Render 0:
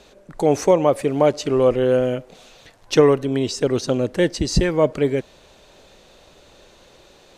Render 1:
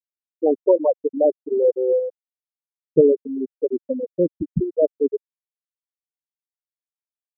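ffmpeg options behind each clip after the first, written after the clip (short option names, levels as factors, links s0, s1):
-af "highshelf=f=6900:g=10,afftfilt=real='re*gte(hypot(re,im),0.794)':imag='im*gte(hypot(re,im),0.794)':win_size=1024:overlap=0.75,highpass=130"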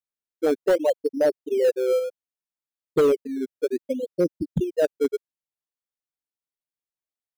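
-filter_complex "[0:a]asplit=2[s0][s1];[s1]acrusher=samples=16:mix=1:aa=0.000001:lfo=1:lforange=16:lforate=0.64,volume=0.251[s2];[s0][s2]amix=inputs=2:normalize=0,asoftclip=type=hard:threshold=0.316,volume=0.631"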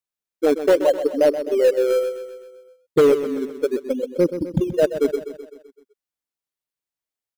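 -af "aeval=exprs='0.2*(cos(1*acos(clip(val(0)/0.2,-1,1)))-cos(1*PI/2))+0.002*(cos(2*acos(clip(val(0)/0.2,-1,1)))-cos(2*PI/2))+0.0112*(cos(3*acos(clip(val(0)/0.2,-1,1)))-cos(3*PI/2))':c=same,aecho=1:1:128|256|384|512|640|768:0.282|0.158|0.0884|0.0495|0.0277|0.0155,volume=1.58"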